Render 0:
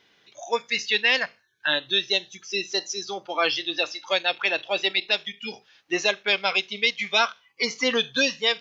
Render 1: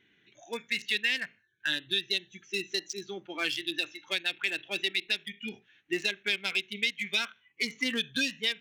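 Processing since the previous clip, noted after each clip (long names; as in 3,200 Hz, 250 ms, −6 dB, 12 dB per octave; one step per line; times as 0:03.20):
adaptive Wiener filter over 9 samples
flat-topped bell 780 Hz −15 dB
downward compressor 2 to 1, threshold −29 dBFS, peak gain reduction 7.5 dB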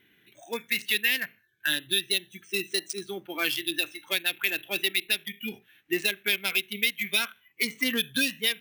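decimation without filtering 3×
level +3.5 dB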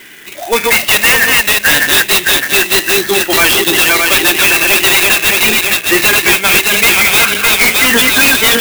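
feedback delay that plays each chunk backwards 306 ms, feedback 60%, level −4 dB
mid-hump overdrive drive 29 dB, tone 5,300 Hz, clips at −7 dBFS
converter with an unsteady clock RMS 0.041 ms
level +7 dB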